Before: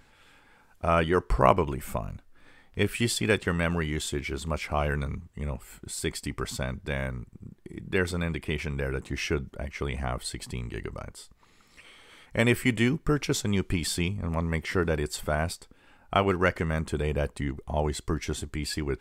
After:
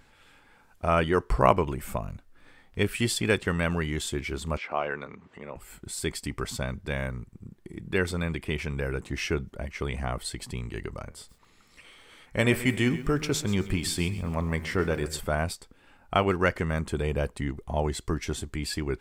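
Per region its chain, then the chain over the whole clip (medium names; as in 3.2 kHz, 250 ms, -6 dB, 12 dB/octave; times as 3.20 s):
4.57–5.56 s: band-pass 340–3000 Hz + upward compressor, threshold -38 dBFS
11.05–15.21 s: de-hum 76.93 Hz, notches 33 + bit-crushed delay 132 ms, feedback 35%, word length 8-bit, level -15 dB
whole clip: none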